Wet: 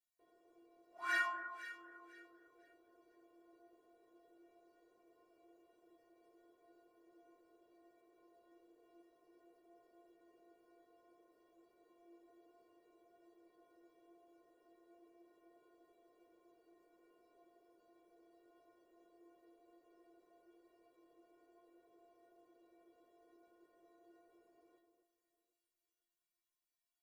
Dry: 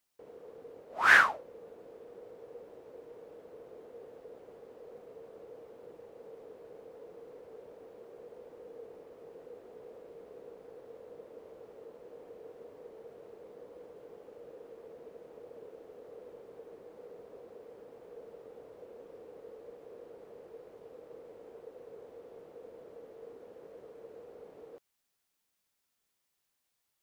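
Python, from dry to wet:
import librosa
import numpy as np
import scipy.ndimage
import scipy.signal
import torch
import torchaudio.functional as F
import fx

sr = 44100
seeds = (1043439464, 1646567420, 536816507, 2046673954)

y = fx.stiff_resonator(x, sr, f0_hz=340.0, decay_s=0.43, stiffness=0.008)
y = fx.echo_alternate(y, sr, ms=251, hz=1400.0, feedback_pct=51, wet_db=-7.5)
y = y * librosa.db_to_amplitude(3.0)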